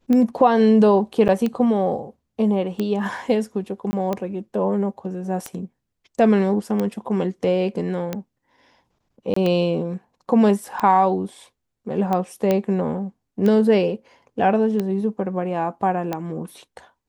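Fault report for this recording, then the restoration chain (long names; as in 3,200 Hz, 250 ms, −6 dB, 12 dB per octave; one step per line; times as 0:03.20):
scratch tick 45 rpm −12 dBFS
0:01.28–0:01.29: drop-out 9.2 ms
0:03.91–0:03.93: drop-out 20 ms
0:09.34–0:09.36: drop-out 24 ms
0:12.51: click −8 dBFS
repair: click removal
repair the gap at 0:01.28, 9.2 ms
repair the gap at 0:03.91, 20 ms
repair the gap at 0:09.34, 24 ms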